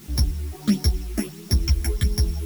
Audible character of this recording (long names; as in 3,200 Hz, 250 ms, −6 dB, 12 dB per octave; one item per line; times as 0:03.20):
a buzz of ramps at a fixed pitch in blocks of 8 samples
phaser sweep stages 8, 1.5 Hz, lowest notch 140–2,800 Hz
a quantiser's noise floor 8 bits, dither triangular
a shimmering, thickened sound